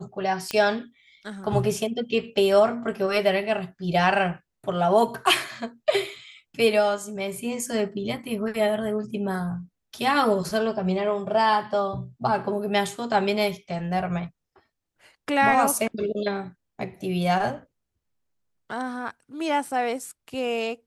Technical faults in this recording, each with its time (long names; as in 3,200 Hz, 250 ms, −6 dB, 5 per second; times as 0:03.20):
0:00.51: click −12 dBFS